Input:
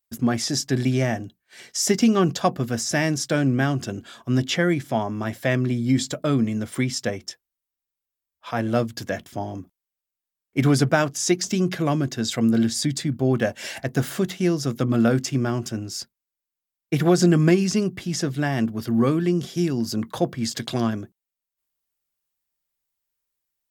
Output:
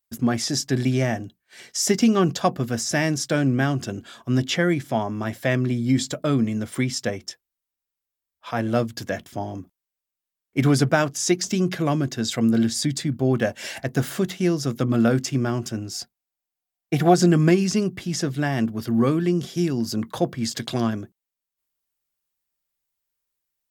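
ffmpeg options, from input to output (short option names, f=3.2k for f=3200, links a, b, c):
-filter_complex "[0:a]asettb=1/sr,asplit=3[a][b][c];[a]atrim=end=15.924[d];[b]atrim=start=15.92:end=17.14,asetpts=PTS-STARTPTS,afade=t=in:d=0.004:c=qsin,afade=t=out:st=1.216:d=0.004:c=qsin,equalizer=f=730:w=7.8:g=13.5[e];[c]atrim=start=17.136[f];[d][e]acrossfade=d=0.004:c1=hsin:c2=qsin[g];[g][f]acrossfade=d=0.004:c1=qsin:c2=hsin"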